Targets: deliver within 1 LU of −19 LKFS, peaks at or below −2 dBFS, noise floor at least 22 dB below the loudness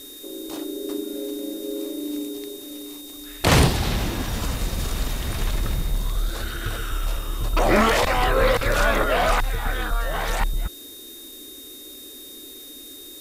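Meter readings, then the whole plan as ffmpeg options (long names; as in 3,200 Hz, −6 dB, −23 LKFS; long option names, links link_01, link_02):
interfering tone 3,700 Hz; level of the tone −42 dBFS; background noise floor −41 dBFS; target noise floor −46 dBFS; integrated loudness −24.0 LKFS; sample peak −7.5 dBFS; target loudness −19.0 LKFS
→ -af "bandreject=frequency=3700:width=30"
-af "afftdn=noise_reduction=6:noise_floor=-41"
-af "volume=5dB"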